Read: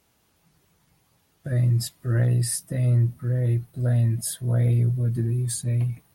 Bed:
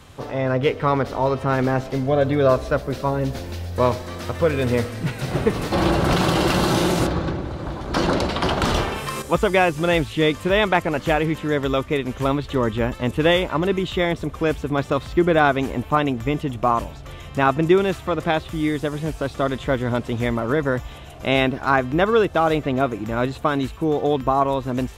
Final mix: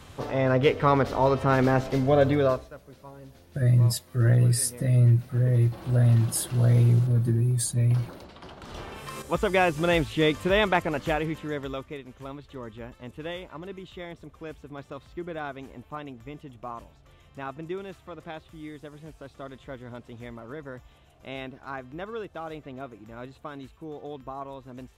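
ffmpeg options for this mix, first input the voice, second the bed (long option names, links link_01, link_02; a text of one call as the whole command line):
ffmpeg -i stem1.wav -i stem2.wav -filter_complex "[0:a]adelay=2100,volume=1dB[link_01];[1:a]volume=18dB,afade=type=out:start_time=2.27:duration=0.42:silence=0.0794328,afade=type=in:start_time=8.67:duration=1.05:silence=0.105925,afade=type=out:start_time=10.59:duration=1.46:silence=0.188365[link_02];[link_01][link_02]amix=inputs=2:normalize=0" out.wav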